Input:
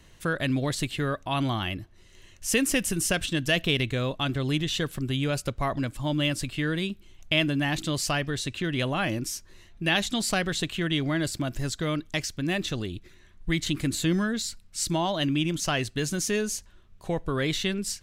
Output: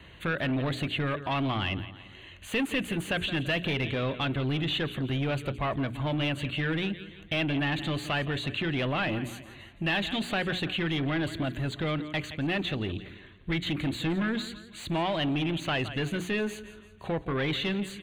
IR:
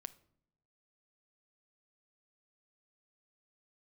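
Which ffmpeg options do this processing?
-filter_complex "[0:a]asplit=2[s0][s1];[s1]acompressor=threshold=0.0178:ratio=6,volume=0.944[s2];[s0][s2]amix=inputs=2:normalize=0,highpass=f=42:w=0.5412,highpass=f=42:w=1.3066,aecho=1:1:169|338|507|676:0.141|0.0622|0.0273|0.012,acrossover=split=700|1700[s3][s4][s5];[s5]asoftclip=type=hard:threshold=0.0708[s6];[s3][s4][s6]amix=inputs=3:normalize=0,asuperstop=centerf=5300:order=8:qfactor=3.4,bandreject=f=60:t=h:w=6,bandreject=f=120:t=h:w=6,bandreject=f=180:t=h:w=6,bandreject=f=240:t=h:w=6,bandreject=f=300:t=h:w=6,bandreject=f=360:t=h:w=6,bandreject=f=420:t=h:w=6,asoftclip=type=tanh:threshold=0.0631,highshelf=f=4500:t=q:w=1.5:g=-14"

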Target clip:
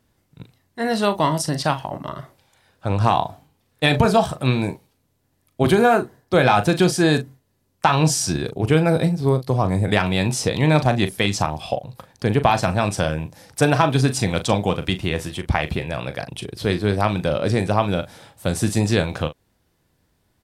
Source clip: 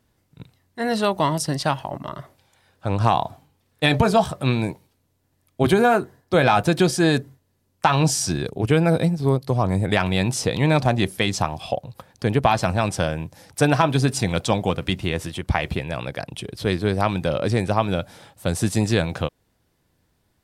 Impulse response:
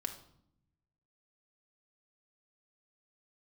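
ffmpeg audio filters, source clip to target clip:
-filter_complex "[0:a]asplit=2[s0][s1];[s1]adelay=39,volume=0.282[s2];[s0][s2]amix=inputs=2:normalize=0,volume=1.12"

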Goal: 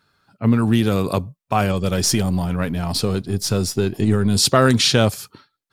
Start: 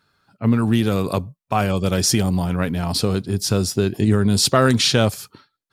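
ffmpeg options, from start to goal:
-filter_complex "[0:a]asettb=1/sr,asplit=3[s0][s1][s2];[s0]atrim=end=1.724[s3];[s1]atrim=start=1.72:end=4.36,asetpts=PTS-STARTPTS,afade=t=in:d=0.004:c=qsin,afade=t=out:st=2.636:d=0.004:c=qsin,aeval=exprs='if(lt(val(0),0),0.708*val(0),val(0))':c=same[s4];[s2]atrim=start=4.356[s5];[s3][s4]acrossfade=d=0.004:c1=hsin:c2=qsin[s6];[s6][s5]acrossfade=d=0.004:c1=qsin:c2=hsin,volume=1.12"

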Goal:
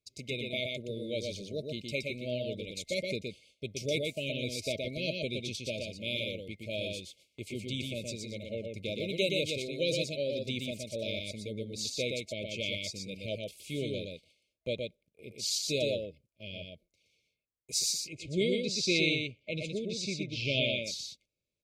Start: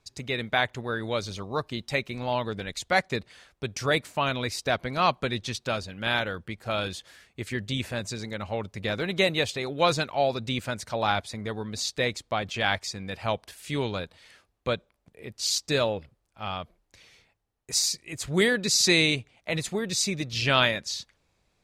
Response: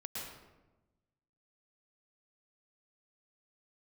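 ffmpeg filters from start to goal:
-filter_complex "[0:a]asettb=1/sr,asplit=3[s0][s1][s2];[s0]atrim=end=18.034[s3];[s1]atrim=start=18.03:end=20.81,asetpts=PTS-STARTPTS,afade=t=in:d=0.004:c=qsin,afade=t=out:st=2.776:d=0.004:c=qsin,lowpass=4200[s4];[s2]atrim=start=20.806[s5];[s3][s4]acrossfade=d=0.004:c1=hsin:c2=qsin[s6];[s6][s5]acrossfade=d=0.004:c1=qsin:c2=hsin,afftfilt=real='re*(1-between(b*sr/4096,650,2100))':imag='im*(1-between(b*sr/4096,650,2100))':win_size=4096:overlap=0.75,agate=range=0.251:threshold=0.00282:ratio=16:detection=peak,lowshelf=f=68:g=-9,aecho=1:1:120:0.668,volume=0.501"

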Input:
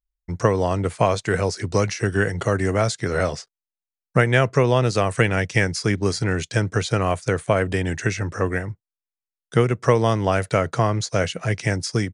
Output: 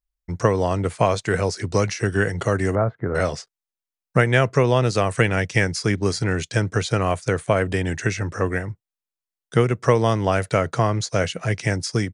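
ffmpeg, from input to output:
-filter_complex "[0:a]asettb=1/sr,asplit=3[s0][s1][s2];[s0]atrim=end=2.754[s3];[s1]atrim=start=2.75:end=3.15,asetpts=PTS-STARTPTS,afade=t=in:d=0.004:c=qsin,afade=t=out:st=0.396:d=0.004:c=qsin,lowpass=f=1400:w=0.5412,lowpass=f=1400:w=1.3066[s4];[s2]atrim=start=3.146[s5];[s3][s4]acrossfade=d=0.004:c1=hsin:c2=qsin[s6];[s6][s5]acrossfade=d=0.004:c1=qsin:c2=hsin"

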